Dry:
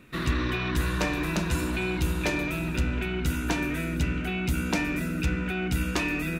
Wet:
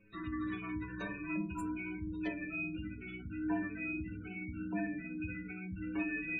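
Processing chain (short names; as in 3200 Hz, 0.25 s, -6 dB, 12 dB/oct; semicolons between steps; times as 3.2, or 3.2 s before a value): high shelf 9900 Hz +11 dB; thinning echo 61 ms, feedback 38%, high-pass 240 Hz, level -8 dB; flange 0.48 Hz, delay 1.7 ms, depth 6.9 ms, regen +67%; spectral gate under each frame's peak -15 dB strong; metallic resonator 100 Hz, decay 0.55 s, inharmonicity 0.008; gain +7 dB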